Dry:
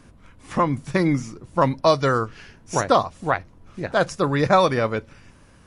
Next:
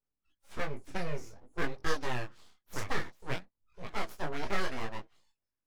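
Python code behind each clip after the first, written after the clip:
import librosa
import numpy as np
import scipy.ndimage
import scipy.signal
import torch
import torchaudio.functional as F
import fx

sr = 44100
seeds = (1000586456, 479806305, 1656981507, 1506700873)

y = fx.noise_reduce_blind(x, sr, reduce_db=30)
y = np.abs(y)
y = fx.detune_double(y, sr, cents=19)
y = F.gain(torch.from_numpy(y), -9.0).numpy()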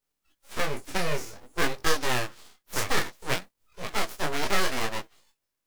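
y = fx.envelope_flatten(x, sr, power=0.6)
y = F.gain(torch.from_numpy(y), 4.5).numpy()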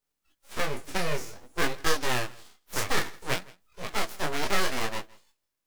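y = x + 10.0 ** (-23.5 / 20.0) * np.pad(x, (int(164 * sr / 1000.0), 0))[:len(x)]
y = F.gain(torch.from_numpy(y), -1.0).numpy()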